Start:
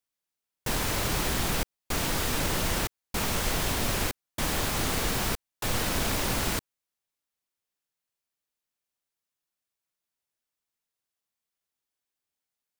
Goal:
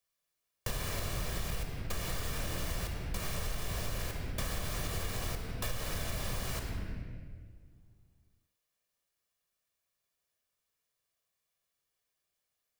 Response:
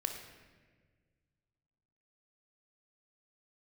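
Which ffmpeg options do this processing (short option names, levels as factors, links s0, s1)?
-filter_complex "[0:a]acrossover=split=190[s0][s1];[s1]volume=39.8,asoftclip=hard,volume=0.0251[s2];[s0][s2]amix=inputs=2:normalize=0[s3];[1:a]atrim=start_sample=2205[s4];[s3][s4]afir=irnorm=-1:irlink=0,acompressor=threshold=0.0178:ratio=6,volume=1.33"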